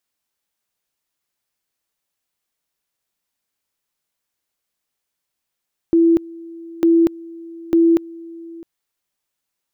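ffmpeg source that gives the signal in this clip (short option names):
-f lavfi -i "aevalsrc='pow(10,(-9.5-22.5*gte(mod(t,0.9),0.24))/20)*sin(2*PI*333*t)':d=2.7:s=44100"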